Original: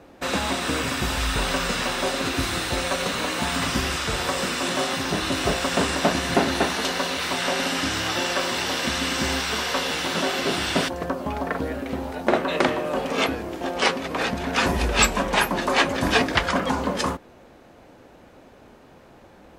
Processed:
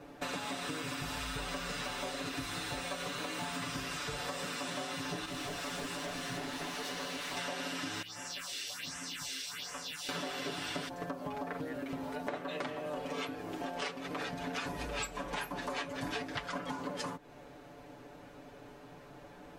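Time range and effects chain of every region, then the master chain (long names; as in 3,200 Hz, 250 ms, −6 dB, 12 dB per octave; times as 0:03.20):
0:05.25–0:07.37: gain into a clipping stage and back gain 25 dB + micro pitch shift up and down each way 58 cents
0:08.02–0:10.09: guitar amp tone stack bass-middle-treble 5-5-5 + all-pass phaser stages 4, 1.3 Hz, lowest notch 140–4,000 Hz
whole clip: comb filter 6.9 ms, depth 96%; downward compressor 6 to 1, threshold −31 dBFS; level −5.5 dB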